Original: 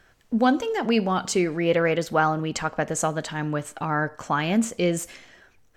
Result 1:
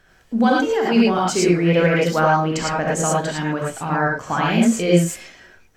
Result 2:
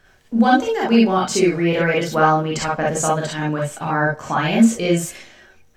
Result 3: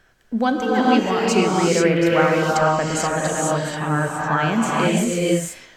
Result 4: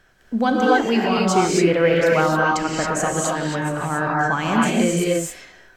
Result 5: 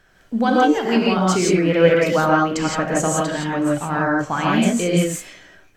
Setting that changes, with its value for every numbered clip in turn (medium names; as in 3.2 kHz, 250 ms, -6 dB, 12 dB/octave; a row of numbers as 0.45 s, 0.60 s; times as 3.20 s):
gated-style reverb, gate: 130 ms, 80 ms, 510 ms, 300 ms, 190 ms